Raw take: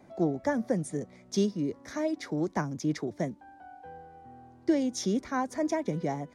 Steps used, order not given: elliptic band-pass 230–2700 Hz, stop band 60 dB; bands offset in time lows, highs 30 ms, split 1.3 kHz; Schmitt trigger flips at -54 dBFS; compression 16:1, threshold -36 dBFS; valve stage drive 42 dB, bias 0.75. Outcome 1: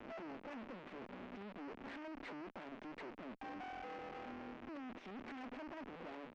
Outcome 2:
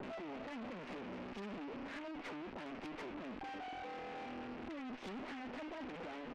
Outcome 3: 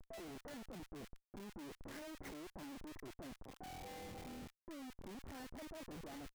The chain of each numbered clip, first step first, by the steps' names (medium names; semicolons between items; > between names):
bands offset in time > compression > Schmitt trigger > elliptic band-pass > valve stage; Schmitt trigger > elliptic band-pass > compression > bands offset in time > valve stage; compression > elliptic band-pass > valve stage > Schmitt trigger > bands offset in time